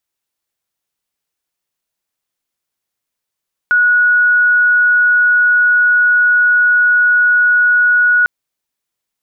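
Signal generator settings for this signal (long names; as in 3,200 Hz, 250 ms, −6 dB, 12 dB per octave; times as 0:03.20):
tone sine 1,460 Hz −7.5 dBFS 4.55 s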